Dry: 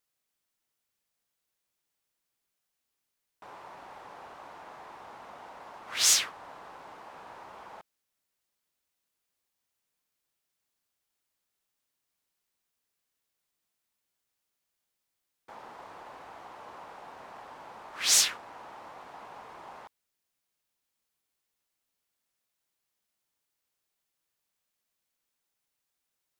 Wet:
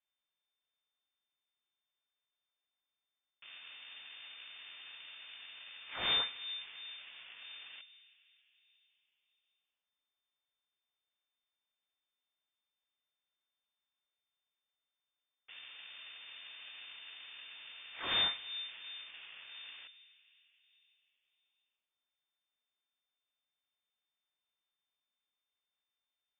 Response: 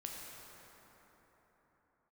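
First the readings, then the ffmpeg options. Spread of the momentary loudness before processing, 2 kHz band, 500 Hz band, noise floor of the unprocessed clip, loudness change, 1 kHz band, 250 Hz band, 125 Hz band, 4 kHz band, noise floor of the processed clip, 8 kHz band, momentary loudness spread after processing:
15 LU, -4.0 dB, -7.0 dB, -84 dBFS, -16.0 dB, -8.5 dB, -4.0 dB, no reading, -3.0 dB, under -85 dBFS, under -40 dB, 20 LU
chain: -filter_complex "[0:a]aeval=exprs='max(val(0),0)':c=same,asplit=2[s0][s1];[1:a]atrim=start_sample=2205,highshelf=f=2100:g=-11.5[s2];[s1][s2]afir=irnorm=-1:irlink=0,volume=0.531[s3];[s0][s3]amix=inputs=2:normalize=0,lowpass=f=3100:t=q:w=0.5098,lowpass=f=3100:t=q:w=0.6013,lowpass=f=3100:t=q:w=0.9,lowpass=f=3100:t=q:w=2.563,afreqshift=-3600,volume=0.708"

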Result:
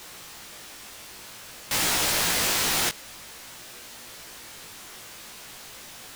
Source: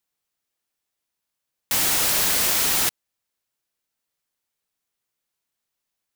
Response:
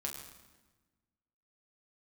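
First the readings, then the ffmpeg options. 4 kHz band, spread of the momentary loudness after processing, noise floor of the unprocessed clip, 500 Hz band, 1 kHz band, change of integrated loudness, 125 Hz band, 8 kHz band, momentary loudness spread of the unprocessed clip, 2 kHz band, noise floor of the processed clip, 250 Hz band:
-0.5 dB, 20 LU, -83 dBFS, +0.5 dB, +0.5 dB, -4.0 dB, +1.0 dB, -3.0 dB, 5 LU, +0.5 dB, -44 dBFS, +1.0 dB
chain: -af "aeval=exprs='val(0)+0.5*0.0237*sgn(val(0))':c=same,highshelf=f=9500:g=-9,flanger=delay=16.5:depth=2.9:speed=0.53,volume=1.33"

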